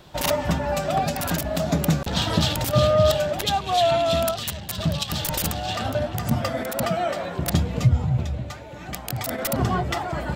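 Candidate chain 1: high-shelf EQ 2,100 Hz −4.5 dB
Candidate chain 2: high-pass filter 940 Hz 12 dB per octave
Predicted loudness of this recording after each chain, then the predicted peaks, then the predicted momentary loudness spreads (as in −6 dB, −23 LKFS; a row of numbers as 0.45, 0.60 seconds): −24.5, −28.5 LKFS; −7.5, −9.0 dBFS; 10, 13 LU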